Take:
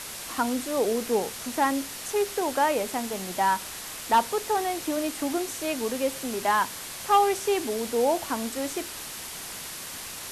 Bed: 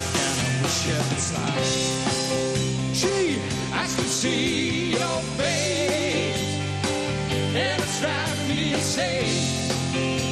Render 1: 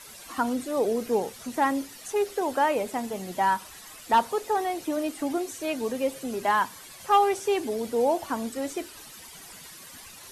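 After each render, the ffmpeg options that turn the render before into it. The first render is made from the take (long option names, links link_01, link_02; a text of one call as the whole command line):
ffmpeg -i in.wav -af "afftdn=noise_reduction=12:noise_floor=-38" out.wav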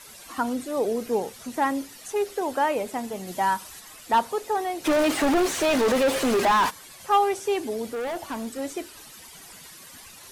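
ffmpeg -i in.wav -filter_complex "[0:a]asettb=1/sr,asplit=3[link_01][link_02][link_03];[link_01]atrim=end=3.274[link_04];[link_02]atrim=start=3.27:end=3.8,asetpts=PTS-STARTPTS,afade=type=in:duration=0.004:curve=qsin,afade=type=out:start_time=0.526:duration=0.004:curve=qsin,bass=frequency=250:gain=1,treble=frequency=4000:gain=4[link_05];[link_03]atrim=start=3.796[link_06];[link_04][link_05]acrossfade=duration=0.004:curve1=hsin:curve2=qsin[link_07];[link_07][link_06]acrossfade=duration=0.004:curve1=qsin:curve2=hsin,asplit=3[link_08][link_09][link_10];[link_08]afade=type=out:start_time=4.84:duration=0.02[link_11];[link_09]asplit=2[link_12][link_13];[link_13]highpass=frequency=720:poles=1,volume=34dB,asoftclip=type=tanh:threshold=-13.5dB[link_14];[link_12][link_14]amix=inputs=2:normalize=0,lowpass=frequency=2200:poles=1,volume=-6dB,afade=type=in:start_time=4.84:duration=0.02,afade=type=out:start_time=6.69:duration=0.02[link_15];[link_10]afade=type=in:start_time=6.69:duration=0.02[link_16];[link_11][link_15][link_16]amix=inputs=3:normalize=0,asettb=1/sr,asplit=3[link_17][link_18][link_19];[link_17]atrim=end=7.854[link_20];[link_18]atrim=start=7.85:end=8.59,asetpts=PTS-STARTPTS,afade=type=in:duration=0.004:curve=qsin,afade=type=out:start_time=0.736:duration=0.004:curve=qsin,asoftclip=type=hard:threshold=-27.5dB[link_21];[link_19]atrim=start=8.586[link_22];[link_20][link_21]acrossfade=duration=0.004:curve1=hsin:curve2=qsin[link_23];[link_23][link_22]acrossfade=duration=0.004:curve1=qsin:curve2=hsin" out.wav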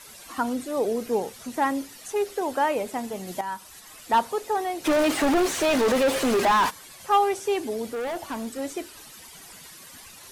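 ffmpeg -i in.wav -filter_complex "[0:a]asplit=2[link_01][link_02];[link_01]atrim=end=3.41,asetpts=PTS-STARTPTS,afade=type=out:start_time=3.406:duration=0.004:curve=hsin:silence=0.251189[link_03];[link_02]atrim=start=3.41,asetpts=PTS-STARTPTS,afade=type=in:duration=0.58:silence=0.251189[link_04];[link_03][link_04]concat=n=2:v=0:a=1" out.wav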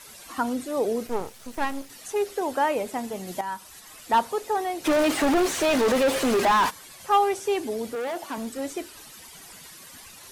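ffmpeg -i in.wav -filter_complex "[0:a]asettb=1/sr,asplit=3[link_01][link_02][link_03];[link_01]atrim=end=1.074[link_04];[link_02]atrim=start=1.07:end=1.9,asetpts=PTS-STARTPTS,afade=type=in:duration=0.004:curve=qsin,afade=type=out:start_time=0.826:duration=0.004:curve=qsin,aeval=exprs='max(val(0),0)':channel_layout=same[link_05];[link_03]atrim=start=1.896[link_06];[link_04][link_05]acrossfade=duration=0.004:curve1=hsin:curve2=qsin[link_07];[link_07][link_06]acrossfade=duration=0.004:curve1=qsin:curve2=hsin,asettb=1/sr,asplit=3[link_08][link_09][link_10];[link_08]atrim=end=7.954[link_11];[link_09]atrim=start=7.95:end=8.38,asetpts=PTS-STARTPTS,afade=type=in:duration=0.004:curve=qsin,afade=type=out:start_time=0.426:duration=0.004:curve=qsin,highpass=200[link_12];[link_10]atrim=start=8.376[link_13];[link_11][link_12]acrossfade=duration=0.004:curve1=hsin:curve2=qsin[link_14];[link_14][link_13]acrossfade=duration=0.004:curve1=qsin:curve2=hsin" out.wav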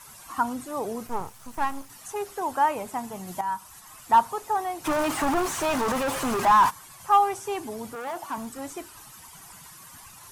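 ffmpeg -i in.wav -af "equalizer=frequency=125:width_type=o:width=1:gain=6,equalizer=frequency=250:width_type=o:width=1:gain=-4,equalizer=frequency=500:width_type=o:width=1:gain=-9,equalizer=frequency=1000:width_type=o:width=1:gain=7,equalizer=frequency=2000:width_type=o:width=1:gain=-4,equalizer=frequency=4000:width_type=o:width=1:gain=-6" out.wav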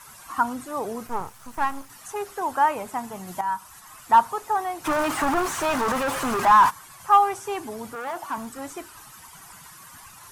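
ffmpeg -i in.wav -af "equalizer=frequency=1400:width_type=o:width=1.2:gain=4.5" out.wav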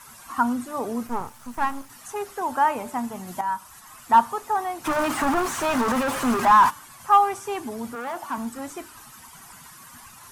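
ffmpeg -i in.wav -af "equalizer=frequency=240:width=7:gain=9.5,bandreject=frequency=294.4:width_type=h:width=4,bandreject=frequency=588.8:width_type=h:width=4,bandreject=frequency=883.2:width_type=h:width=4,bandreject=frequency=1177.6:width_type=h:width=4,bandreject=frequency=1472:width_type=h:width=4,bandreject=frequency=1766.4:width_type=h:width=4,bandreject=frequency=2060.8:width_type=h:width=4,bandreject=frequency=2355.2:width_type=h:width=4,bandreject=frequency=2649.6:width_type=h:width=4,bandreject=frequency=2944:width_type=h:width=4,bandreject=frequency=3238.4:width_type=h:width=4,bandreject=frequency=3532.8:width_type=h:width=4,bandreject=frequency=3827.2:width_type=h:width=4,bandreject=frequency=4121.6:width_type=h:width=4,bandreject=frequency=4416:width_type=h:width=4,bandreject=frequency=4710.4:width_type=h:width=4,bandreject=frequency=5004.8:width_type=h:width=4,bandreject=frequency=5299.2:width_type=h:width=4,bandreject=frequency=5593.6:width_type=h:width=4,bandreject=frequency=5888:width_type=h:width=4,bandreject=frequency=6182.4:width_type=h:width=4,bandreject=frequency=6476.8:width_type=h:width=4,bandreject=frequency=6771.2:width_type=h:width=4,bandreject=frequency=7065.6:width_type=h:width=4,bandreject=frequency=7360:width_type=h:width=4,bandreject=frequency=7654.4:width_type=h:width=4,bandreject=frequency=7948.8:width_type=h:width=4,bandreject=frequency=8243.2:width_type=h:width=4,bandreject=frequency=8537.6:width_type=h:width=4,bandreject=frequency=8832:width_type=h:width=4,bandreject=frequency=9126.4:width_type=h:width=4,bandreject=frequency=9420.8:width_type=h:width=4,bandreject=frequency=9715.2:width_type=h:width=4,bandreject=frequency=10009.6:width_type=h:width=4,bandreject=frequency=10304:width_type=h:width=4,bandreject=frequency=10598.4:width_type=h:width=4,bandreject=frequency=10892.8:width_type=h:width=4,bandreject=frequency=11187.2:width_type=h:width=4,bandreject=frequency=11481.6:width_type=h:width=4" out.wav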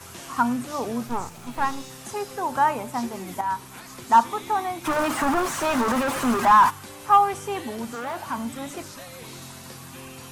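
ffmpeg -i in.wav -i bed.wav -filter_complex "[1:a]volume=-18dB[link_01];[0:a][link_01]amix=inputs=2:normalize=0" out.wav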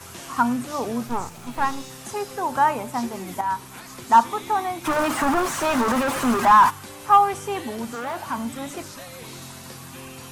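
ffmpeg -i in.wav -af "volume=1.5dB" out.wav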